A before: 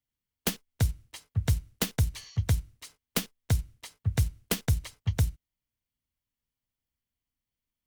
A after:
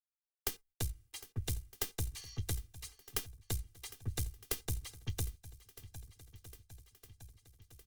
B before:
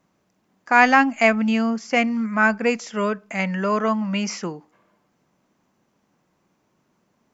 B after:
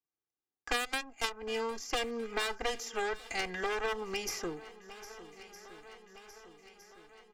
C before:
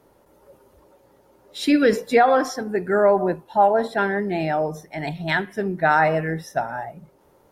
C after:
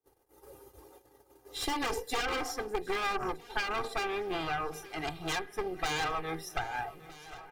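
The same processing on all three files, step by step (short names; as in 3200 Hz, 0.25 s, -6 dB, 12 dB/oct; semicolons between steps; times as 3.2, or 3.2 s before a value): one-sided fold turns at -15 dBFS; gate -54 dBFS, range -35 dB; dynamic EQ 720 Hz, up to +5 dB, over -30 dBFS, Q 1.1; added harmonics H 3 -7 dB, 5 -36 dB, 6 -28 dB, 8 -22 dB, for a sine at -0.5 dBFS; high shelf 5100 Hz +8.5 dB; compressor 6:1, threshold -31 dBFS; comb 2.5 ms, depth 78%; swung echo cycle 1.261 s, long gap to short 1.5:1, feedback 42%, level -21.5 dB; three-band squash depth 40%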